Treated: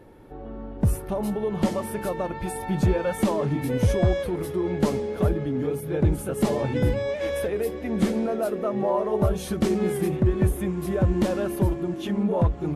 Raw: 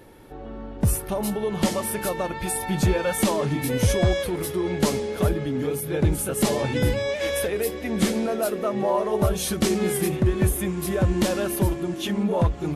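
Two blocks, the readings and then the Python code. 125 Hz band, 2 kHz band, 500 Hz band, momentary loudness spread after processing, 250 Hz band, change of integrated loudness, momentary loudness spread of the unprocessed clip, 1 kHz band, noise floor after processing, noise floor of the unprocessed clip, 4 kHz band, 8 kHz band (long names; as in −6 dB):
0.0 dB, −5.5 dB, −0.5 dB, 6 LU, 0.0 dB, −1.0 dB, 5 LU, −2.0 dB, −37 dBFS, −36 dBFS, −9.0 dB, −11.0 dB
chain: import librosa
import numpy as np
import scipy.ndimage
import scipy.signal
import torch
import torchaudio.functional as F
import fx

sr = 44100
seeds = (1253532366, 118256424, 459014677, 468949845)

y = fx.high_shelf(x, sr, hz=2000.0, db=-11.5)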